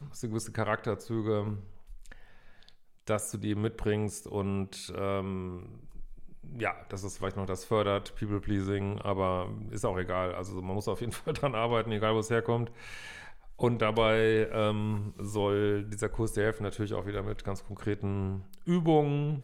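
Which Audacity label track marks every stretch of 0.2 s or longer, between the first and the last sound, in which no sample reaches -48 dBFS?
2.740000	3.070000	silence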